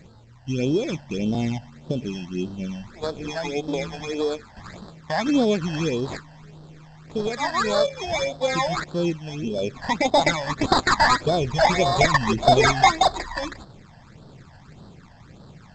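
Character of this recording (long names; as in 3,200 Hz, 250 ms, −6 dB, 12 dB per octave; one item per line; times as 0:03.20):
aliases and images of a low sample rate 2,900 Hz, jitter 0%
phaser sweep stages 12, 1.7 Hz, lowest notch 380–2,300 Hz
G.722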